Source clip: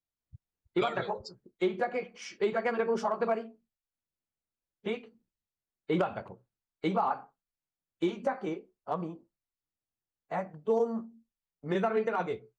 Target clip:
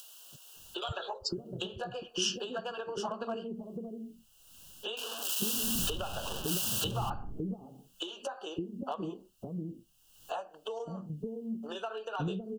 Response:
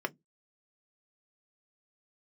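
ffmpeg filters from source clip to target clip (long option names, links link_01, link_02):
-filter_complex "[0:a]asettb=1/sr,asplit=3[link_01][link_02][link_03];[link_01]atrim=end=4.974[link_04];[link_02]atrim=start=4.97:end=7.1,asetpts=PTS-STARTPTS,afade=type=in:duration=0.004:curve=qsin,afade=type=out:start_time=2.126:duration=0.004:curve=qsin,aeval=exprs='val(0)+0.5*0.015*sgn(val(0))':channel_layout=same[link_05];[link_03]atrim=start=7.096[link_06];[link_04][link_05]acrossfade=duration=0.004:curve1=hsin:curve2=qsin[link_07];[link_07][link_06]acrossfade=duration=0.004:curve1=qsin:curve2=hsin,acompressor=threshold=-40dB:ratio=8,equalizer=frequency=2900:width_type=o:width=0.3:gain=14,acrossover=split=420[link_08][link_09];[link_08]adelay=560[link_10];[link_10][link_09]amix=inputs=2:normalize=0,acompressor=mode=upward:threshold=-44dB:ratio=2.5,asuperstop=centerf=2100:order=8:qfactor=2.2,bass=frequency=250:gain=4,treble=frequency=4000:gain=9,volume=7dB"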